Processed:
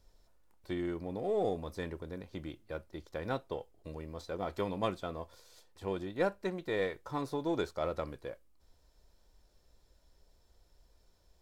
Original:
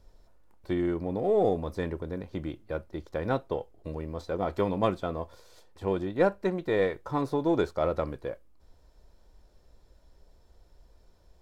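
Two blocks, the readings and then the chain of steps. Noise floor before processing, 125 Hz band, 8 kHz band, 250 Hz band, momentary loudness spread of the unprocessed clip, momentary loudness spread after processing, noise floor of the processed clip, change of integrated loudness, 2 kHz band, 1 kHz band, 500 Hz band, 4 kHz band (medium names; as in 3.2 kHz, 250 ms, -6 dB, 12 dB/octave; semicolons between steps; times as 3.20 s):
-60 dBFS, -8.0 dB, no reading, -8.0 dB, 11 LU, 11 LU, -68 dBFS, -7.5 dB, -4.5 dB, -6.5 dB, -7.5 dB, -1.5 dB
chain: treble shelf 2.1 kHz +8.5 dB; trim -8 dB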